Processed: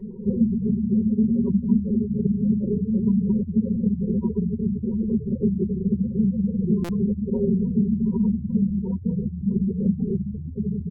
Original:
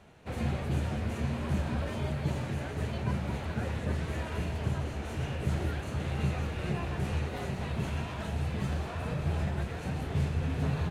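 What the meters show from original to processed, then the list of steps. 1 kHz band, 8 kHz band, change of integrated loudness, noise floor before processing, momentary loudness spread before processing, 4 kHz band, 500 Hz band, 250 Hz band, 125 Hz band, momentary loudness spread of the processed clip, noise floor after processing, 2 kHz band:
below −10 dB, below −10 dB, +10.0 dB, −39 dBFS, 4 LU, below −15 dB, +7.5 dB, +17.0 dB, +4.5 dB, 5 LU, −34 dBFS, below −15 dB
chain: running median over 25 samples
low-shelf EQ 270 Hz +7.5 dB
soft clipping −16.5 dBFS, distortion −21 dB
EQ curve with evenly spaced ripples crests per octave 0.87, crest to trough 13 dB
repeating echo 148 ms, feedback 47%, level −9 dB
speech leveller within 5 dB 0.5 s
gate on every frequency bin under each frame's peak −15 dB strong
downward compressor, threshold −30 dBFS, peak gain reduction 11 dB
comb filter 5.4 ms, depth 64%
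hollow resonant body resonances 240/350/1,900 Hz, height 16 dB, ringing for 35 ms
buffer that repeats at 0:06.84, samples 256, times 8

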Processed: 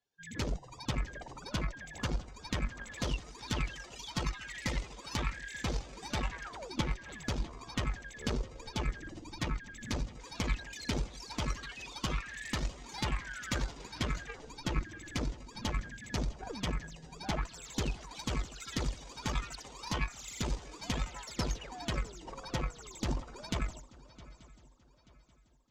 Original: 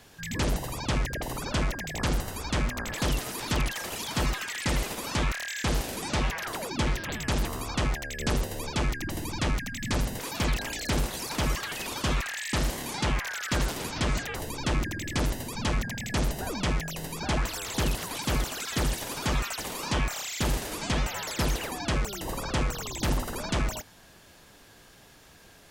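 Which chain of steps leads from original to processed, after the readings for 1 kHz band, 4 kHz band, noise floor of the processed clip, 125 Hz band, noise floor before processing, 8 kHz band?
−8.5 dB, −8.0 dB, −59 dBFS, −7.5 dB, −54 dBFS, −10.5 dB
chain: spectral dynamics exaggerated over time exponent 2
Butterworth low-pass 7,600 Hz 48 dB per octave
in parallel at +2 dB: downward compressor, threshold −38 dBFS, peak gain reduction 13 dB
on the sum: feedback echo with a long and a short gap by turns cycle 883 ms, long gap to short 3 to 1, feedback 35%, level −15 dB
harmonic generator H 3 −13 dB, 4 −25 dB, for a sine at −15.5 dBFS

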